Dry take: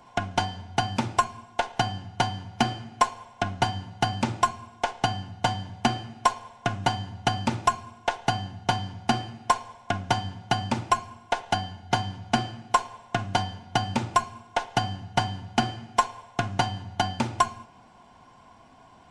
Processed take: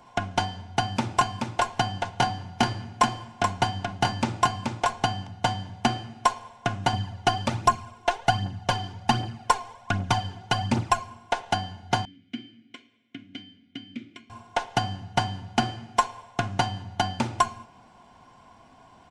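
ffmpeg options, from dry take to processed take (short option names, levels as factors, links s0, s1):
-filter_complex "[0:a]asplit=3[s0][s1][s2];[s0]afade=t=out:st=1.05:d=0.02[s3];[s1]aecho=1:1:429:0.631,afade=t=in:st=1.05:d=0.02,afade=t=out:st=5.25:d=0.02[s4];[s2]afade=t=in:st=5.25:d=0.02[s5];[s3][s4][s5]amix=inputs=3:normalize=0,asettb=1/sr,asplit=3[s6][s7][s8];[s6]atrim=end=6.934[s9];[s7]atrim=start=6.93:end=11.04,asetpts=PTS-STARTPTS,afade=t=in:d=0.004:c=qsin,afade=t=out:st=4.106:d=0.004:c=qsin,aphaser=in_gain=1:out_gain=1:delay=3:decay=0.5:speed=1.3:type=triangular[s10];[s8]atrim=start=11.036[s11];[s9][s10]acrossfade=d=0.004:c1=hsin:c2=qsin[s12];[s12][s11]acrossfade=d=0.004:c1=qsin:c2=hsin,asettb=1/sr,asplit=3[s13][s14][s15];[s13]atrim=end=12.054[s16];[s14]atrim=start=12.05:end=14.3,asetpts=PTS-STARTPTS,afade=t=in:d=0.004:c=qsin,afade=t=out:st=2.246:d=0.004:c=qsin,asplit=3[s17][s18][s19];[s17]bandpass=f=270:t=q:w=8,volume=1[s20];[s18]bandpass=f=2290:t=q:w=8,volume=0.501[s21];[s19]bandpass=f=3010:t=q:w=8,volume=0.355[s22];[s20][s21][s22]amix=inputs=3:normalize=0[s23];[s15]atrim=start=14.296[s24];[s16][s23]acrossfade=d=0.004:c1=hsin:c2=qsin[s25];[s25][s24]acrossfade=d=0.004:c1=qsin:c2=hsin"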